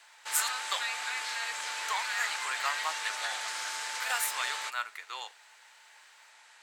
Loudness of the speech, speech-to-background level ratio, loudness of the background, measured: −35.0 LKFS, −1.0 dB, −34.0 LKFS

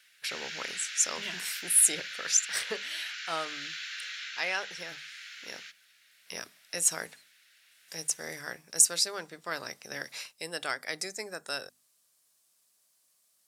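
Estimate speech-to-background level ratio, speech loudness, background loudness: 9.0 dB, −29.5 LKFS, −38.5 LKFS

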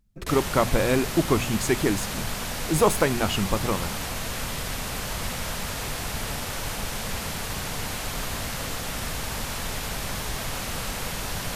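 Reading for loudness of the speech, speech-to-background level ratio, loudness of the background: −25.0 LKFS, 5.5 dB, −30.5 LKFS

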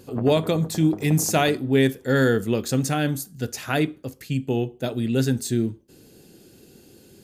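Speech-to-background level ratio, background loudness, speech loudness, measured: 14.5 dB, −37.5 LKFS, −23.0 LKFS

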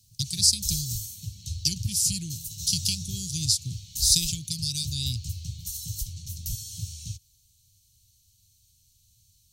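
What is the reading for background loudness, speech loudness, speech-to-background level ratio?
−35.0 LKFS, −25.5 LKFS, 9.5 dB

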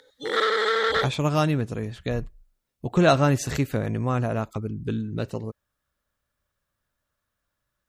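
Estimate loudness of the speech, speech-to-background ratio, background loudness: −25.5 LKFS, −2.0 dB, −23.5 LKFS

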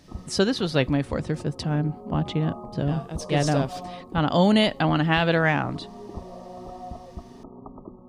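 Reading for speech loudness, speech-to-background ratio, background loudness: −24.0 LKFS, 16.5 dB, −40.5 LKFS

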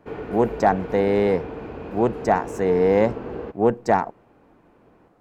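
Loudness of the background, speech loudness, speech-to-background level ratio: −33.5 LKFS, −21.5 LKFS, 12.0 dB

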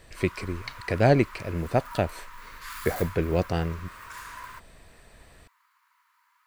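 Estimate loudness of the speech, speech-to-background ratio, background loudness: −27.5 LKFS, 15.0 dB, −42.5 LKFS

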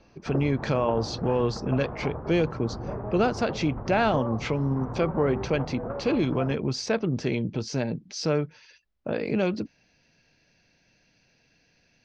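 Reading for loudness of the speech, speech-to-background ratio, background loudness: −27.5 LKFS, 8.5 dB, −36.0 LKFS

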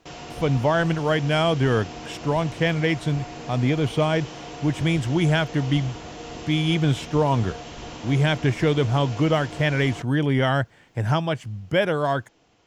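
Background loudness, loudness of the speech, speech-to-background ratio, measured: −37.0 LKFS, −23.0 LKFS, 14.0 dB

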